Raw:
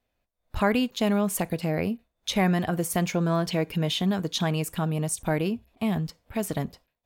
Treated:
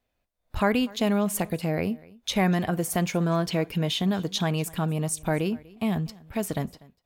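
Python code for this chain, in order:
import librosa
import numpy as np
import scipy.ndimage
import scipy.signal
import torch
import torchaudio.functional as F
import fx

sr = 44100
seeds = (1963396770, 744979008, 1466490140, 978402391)

y = x + 10.0 ** (-23.0 / 20.0) * np.pad(x, (int(244 * sr / 1000.0), 0))[:len(x)]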